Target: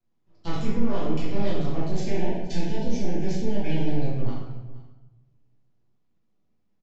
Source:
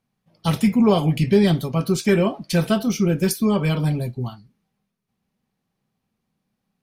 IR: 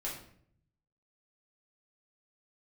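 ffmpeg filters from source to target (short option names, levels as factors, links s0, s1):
-filter_complex "[0:a]highpass=50,lowshelf=f=280:g=8,aecho=1:1:3:0.44,alimiter=limit=0.211:level=0:latency=1:release=99,aeval=exprs='max(val(0),0)':c=same,asettb=1/sr,asplit=3[s0][s1][s2];[s0]atrim=end=1.764[s3];[s1]atrim=start=1.76:end=4.06,asetpts=PTS-STARTPTS,afade=t=in:d=0.004:c=qsin,afade=t=out:st=2.296:d=0.004:c=qsin,asuperstop=centerf=1200:order=12:qfactor=2.1[s4];[s2]atrim=start=4.056[s5];[s3][s4]acrossfade=d=0.004:c1=hsin:c2=qsin[s6];[s6][s5]acrossfade=d=0.004:c1=qsin:c2=hsin,aecho=1:1:475:0.0891[s7];[1:a]atrim=start_sample=2205,asetrate=24255,aresample=44100[s8];[s7][s8]afir=irnorm=-1:irlink=0,aresample=16000,aresample=44100,volume=0.376"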